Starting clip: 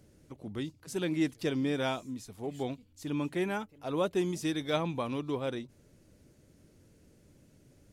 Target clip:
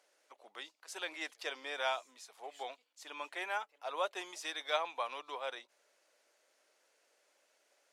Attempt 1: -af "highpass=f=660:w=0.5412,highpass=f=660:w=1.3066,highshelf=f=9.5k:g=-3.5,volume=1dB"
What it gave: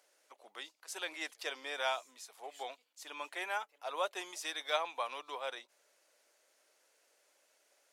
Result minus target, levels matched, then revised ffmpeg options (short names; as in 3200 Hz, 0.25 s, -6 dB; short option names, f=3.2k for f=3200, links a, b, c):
8000 Hz band +3.0 dB
-af "highpass=f=660:w=0.5412,highpass=f=660:w=1.3066,highshelf=f=9.5k:g=-13.5,volume=1dB"